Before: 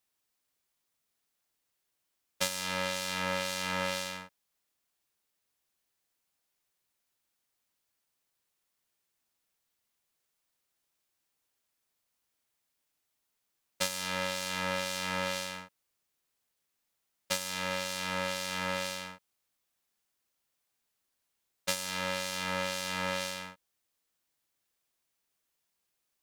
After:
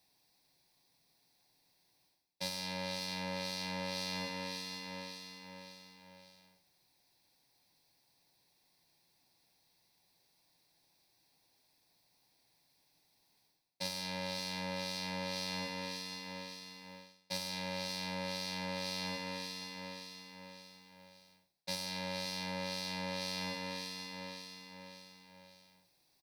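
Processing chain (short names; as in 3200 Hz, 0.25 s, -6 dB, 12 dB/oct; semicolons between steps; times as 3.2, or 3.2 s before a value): bell 220 Hz -9 dB 0.25 oct; feedback echo 0.577 s, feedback 47%, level -16.5 dB; reverb RT60 1.0 s, pre-delay 3 ms, DRR 13 dB; reverse; compressor 8:1, threshold -41 dBFS, peak gain reduction 20.5 dB; reverse; gain +4.5 dB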